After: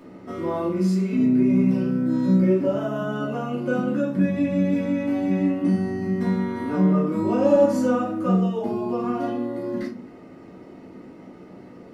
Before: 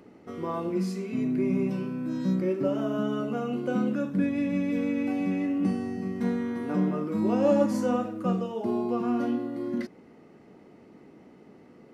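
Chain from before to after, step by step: in parallel at +1 dB: compression, threshold -36 dBFS, peak gain reduction 17 dB; on the sum: reverberation RT60 0.35 s, pre-delay 3 ms, DRR -5 dB; trim -4.5 dB

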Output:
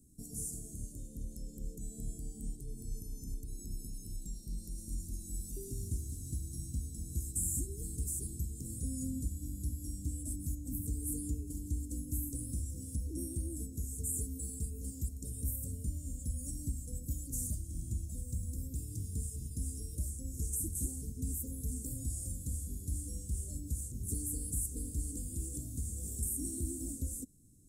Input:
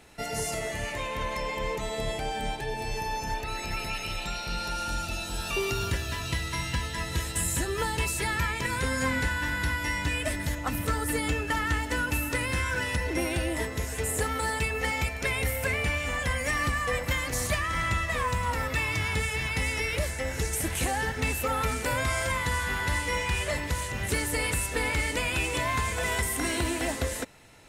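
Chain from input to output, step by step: 5.64–6.36 s: one-bit delta coder 64 kbps, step -36.5 dBFS; elliptic band-stop 270–7800 Hz, stop band 70 dB; dynamic bell 150 Hz, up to -5 dB, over -46 dBFS, Q 0.9; trim -3.5 dB

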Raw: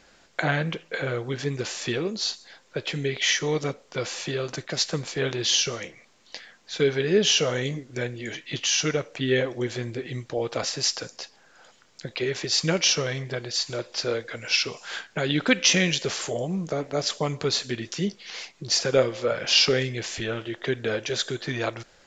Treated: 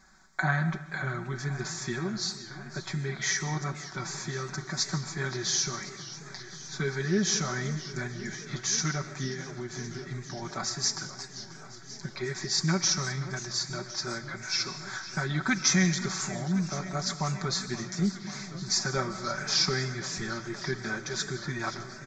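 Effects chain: comb 5.3 ms, depth 69%; 9.27–10.42 s: compression, threshold -26 dBFS, peak gain reduction 11 dB; static phaser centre 1.2 kHz, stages 4; reverberation RT60 0.90 s, pre-delay 95 ms, DRR 13 dB; modulated delay 530 ms, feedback 80%, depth 159 cents, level -15.5 dB; trim -1.5 dB

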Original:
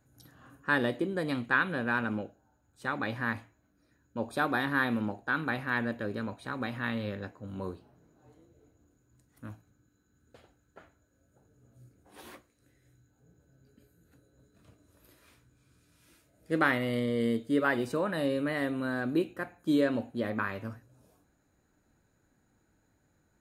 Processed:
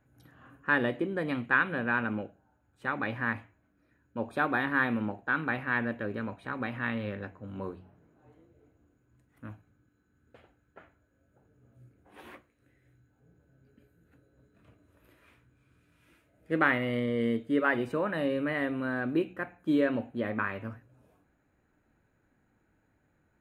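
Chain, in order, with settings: resonant high shelf 3.5 kHz -9.5 dB, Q 1.5; de-hum 46.36 Hz, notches 4

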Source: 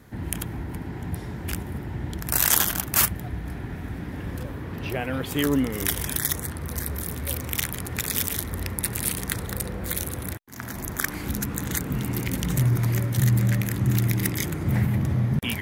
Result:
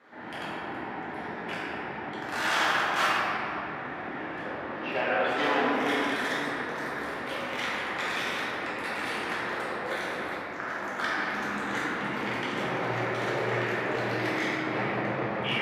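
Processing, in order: treble shelf 2.4 kHz -8 dB; wavefolder -19 dBFS; band-pass 680–3400 Hz; simulated room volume 130 m³, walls hard, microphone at 1.3 m

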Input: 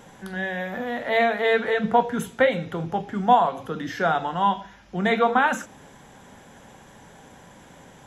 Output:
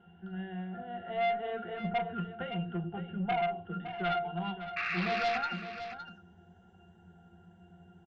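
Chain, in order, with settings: pitch-class resonator F, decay 0.18 s; painted sound noise, 4.76–5.38 s, 1.1–2.8 kHz -37 dBFS; valve stage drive 29 dB, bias 0.2; low-pass sweep 2.9 kHz -> 8.7 kHz, 3.70–7.32 s; delay 562 ms -11 dB; trim +2 dB

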